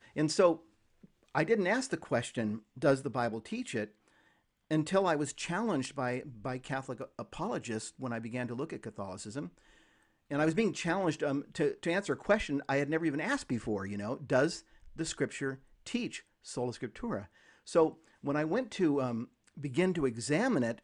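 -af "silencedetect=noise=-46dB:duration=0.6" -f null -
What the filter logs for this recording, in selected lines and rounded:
silence_start: 3.87
silence_end: 4.71 | silence_duration: 0.84
silence_start: 9.49
silence_end: 10.31 | silence_duration: 0.82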